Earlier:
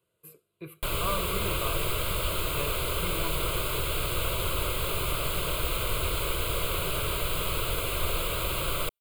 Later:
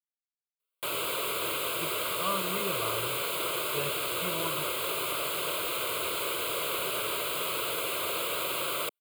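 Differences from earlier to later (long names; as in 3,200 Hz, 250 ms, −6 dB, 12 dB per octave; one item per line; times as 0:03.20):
speech: entry +1.20 s
background: add high-pass filter 300 Hz 12 dB per octave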